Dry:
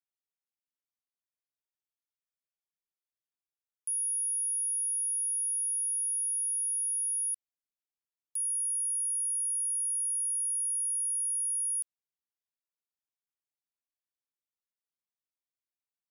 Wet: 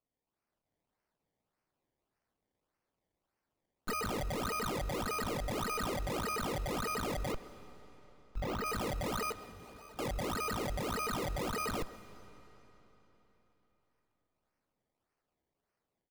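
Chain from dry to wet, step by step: comb filter that takes the minimum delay 0.42 ms; peak limiter -38 dBFS, peak gain reduction 9 dB; 9.32–9.99 s: tilt EQ -5.5 dB/octave; decimation with a swept rate 23×, swing 100% 1.7 Hz; 7.32–8.66 s: peaking EQ 9.8 kHz -12 dB 1.4 oct; reverberation RT60 3.9 s, pre-delay 123 ms, DRR 16 dB; level rider gain up to 6 dB; speakerphone echo 130 ms, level -15 dB; trim +3 dB

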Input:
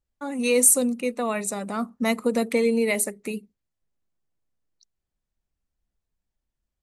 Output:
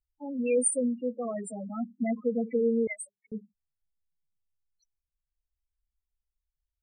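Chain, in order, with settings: loudest bins only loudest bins 4; 2.87–3.32 s: inverse Chebyshev band-stop 180–450 Hz, stop band 50 dB; trim -3.5 dB

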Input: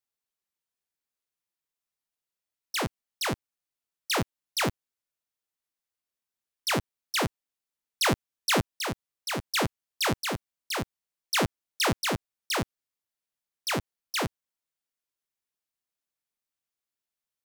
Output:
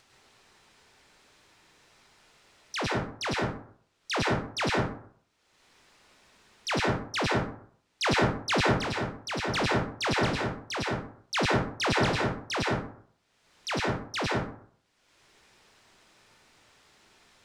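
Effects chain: upward compressor, threshold -29 dBFS; distance through air 99 m; plate-style reverb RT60 0.57 s, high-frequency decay 0.5×, pre-delay 90 ms, DRR -2.5 dB; trim -1.5 dB

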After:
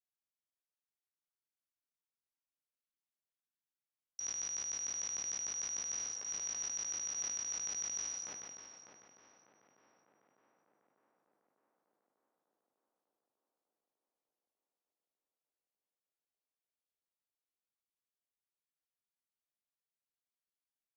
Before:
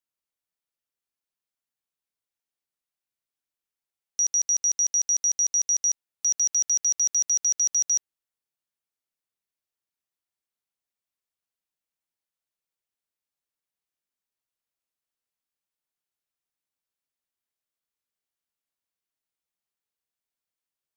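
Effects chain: spectral sustain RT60 0.59 s; low-pass that closes with the level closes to 2.7 kHz, closed at -25 dBFS; gate with hold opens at -42 dBFS; in parallel at +2.5 dB: compressor with a negative ratio -46 dBFS, ratio -1; on the sum: peak limiter -27 dBFS, peak gain reduction 9 dB; on a send: tape echo 598 ms, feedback 76%, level -4 dB, low-pass 2 kHz; on the sum: decay stretcher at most 23 dB/s; trim -6 dB

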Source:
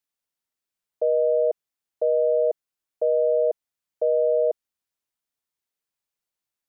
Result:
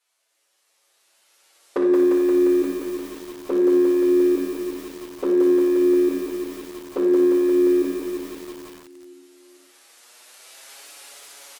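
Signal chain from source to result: recorder AGC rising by 18 dB/s; high-pass 640 Hz 24 dB/octave; in parallel at +1 dB: compression 8:1, threshold -42 dBFS, peak gain reduction 19 dB; on the sum: overload inside the chain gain 23 dB; touch-sensitive flanger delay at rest 5.3 ms, full sweep at -26.5 dBFS; doubling 34 ms -7 dB; feedback delay 252 ms, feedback 50%, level -19 dB; on a send at -1.5 dB: reverberation RT60 0.60 s, pre-delay 5 ms; on the sum: speed mistake 78 rpm record played at 45 rpm; bit-crushed delay 175 ms, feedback 80%, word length 8-bit, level -4 dB; trim +8 dB

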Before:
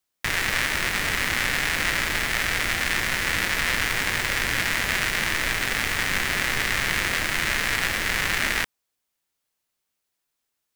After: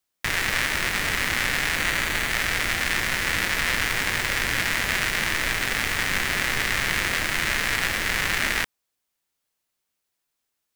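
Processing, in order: 1.78–2.31 s: band-stop 5.2 kHz, Q 12

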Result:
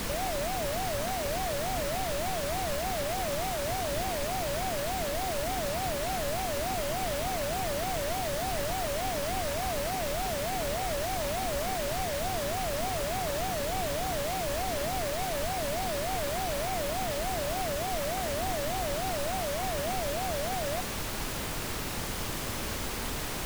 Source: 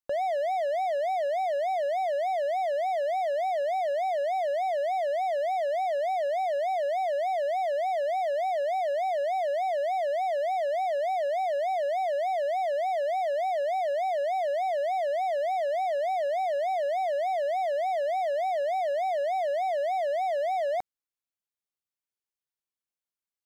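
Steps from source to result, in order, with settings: peak limiter -34.5 dBFS, peak gain reduction 12 dB; added noise pink -39 dBFS; trim +5 dB

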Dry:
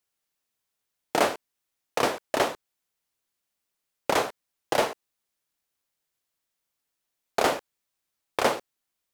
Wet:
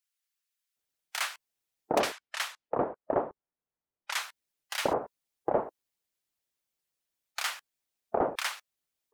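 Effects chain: 2.00–4.21 s: level-controlled noise filter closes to 1.2 kHz, open at -21.5 dBFS; bands offset in time highs, lows 760 ms, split 1.2 kHz; harmonic-percussive split percussive +7 dB; trim -8 dB

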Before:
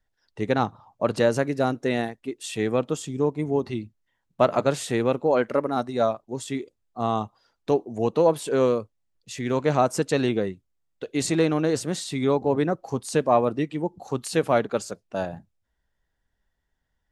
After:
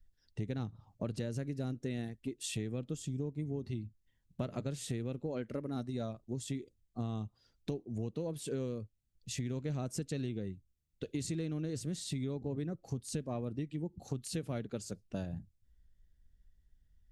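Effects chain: amplifier tone stack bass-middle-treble 10-0-1; compression 6:1, threshold -53 dBFS, peak gain reduction 15 dB; trim +18 dB

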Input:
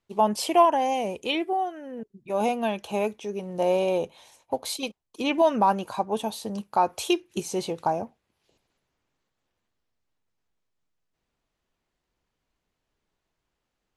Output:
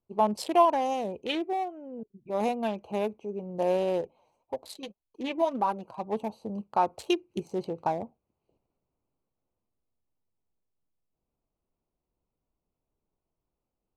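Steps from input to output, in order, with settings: local Wiener filter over 25 samples; 4.01–6.05 s: flange 1.8 Hz, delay 1.6 ms, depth 5.1 ms, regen +39%; trim -2.5 dB

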